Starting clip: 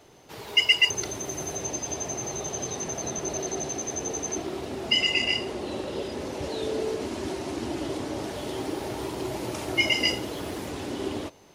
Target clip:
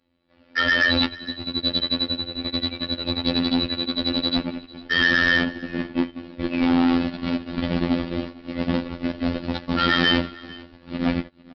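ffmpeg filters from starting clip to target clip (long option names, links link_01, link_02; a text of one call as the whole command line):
ffmpeg -i in.wav -filter_complex "[0:a]agate=range=-35dB:threshold=-29dB:ratio=16:detection=peak,aecho=1:1:2.2:0.99,alimiter=limit=-16.5dB:level=0:latency=1:release=111,tremolo=f=100:d=0.519,aeval=exprs='0.282*sin(PI/2*3.55*val(0)/0.282)':channel_layout=same,asetrate=27781,aresample=44100,atempo=1.5874,asoftclip=type=hard:threshold=-19.5dB,afftfilt=real='hypot(re,im)*cos(PI*b)':imag='0':win_size=2048:overlap=0.75,asplit=2[link_01][link_02];[link_02]aecho=0:1:450:0.0794[link_03];[link_01][link_03]amix=inputs=2:normalize=0,aresample=11025,aresample=44100,volume=6dB" out.wav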